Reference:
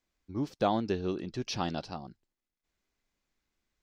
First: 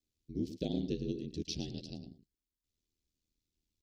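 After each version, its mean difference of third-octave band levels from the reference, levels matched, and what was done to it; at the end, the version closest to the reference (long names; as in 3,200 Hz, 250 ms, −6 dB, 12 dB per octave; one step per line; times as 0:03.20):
8.5 dB: on a send: single-tap delay 110 ms −11.5 dB
on the sum: ring modulation 40 Hz
Chebyshev band-stop filter 350–3,700 Hz, order 2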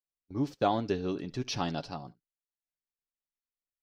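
1.0 dB: noise gate −45 dBFS, range −25 dB
comb filter 7.1 ms, depth 39%
on a send: single-tap delay 71 ms −22.5 dB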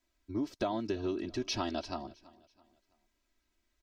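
4.0 dB: comb filter 3.1 ms, depth 96%
downward compressor 6 to 1, threshold −30 dBFS, peak gain reduction 11 dB
on a send: repeating echo 330 ms, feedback 40%, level −21.5 dB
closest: second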